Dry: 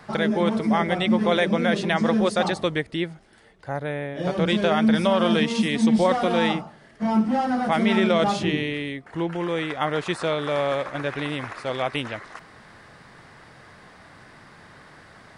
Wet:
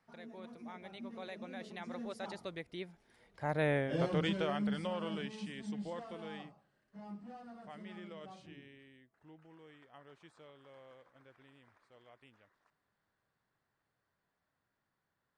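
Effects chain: Doppler pass-by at 3.72 s, 24 m/s, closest 4 m; trim -1.5 dB

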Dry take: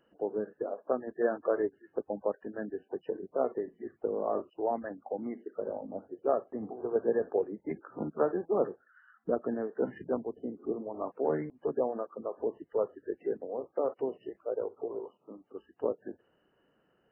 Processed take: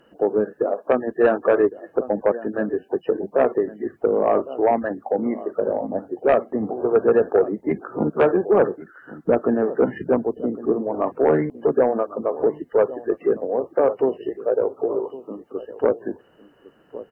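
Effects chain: echo from a far wall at 190 m, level -17 dB; sine folder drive 5 dB, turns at -14 dBFS; trim +5 dB

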